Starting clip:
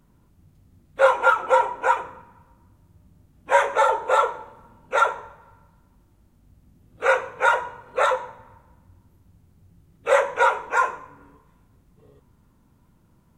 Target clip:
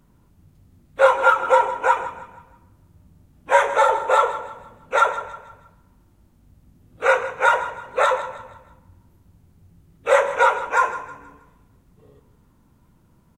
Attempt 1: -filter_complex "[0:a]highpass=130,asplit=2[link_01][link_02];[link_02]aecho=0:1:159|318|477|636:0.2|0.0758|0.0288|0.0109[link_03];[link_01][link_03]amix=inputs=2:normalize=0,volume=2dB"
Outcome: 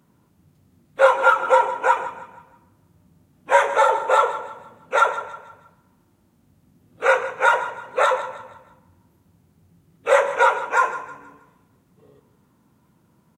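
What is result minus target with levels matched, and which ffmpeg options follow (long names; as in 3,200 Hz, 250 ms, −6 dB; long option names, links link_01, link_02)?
125 Hz band −4.5 dB
-filter_complex "[0:a]asplit=2[link_01][link_02];[link_02]aecho=0:1:159|318|477|636:0.2|0.0758|0.0288|0.0109[link_03];[link_01][link_03]amix=inputs=2:normalize=0,volume=2dB"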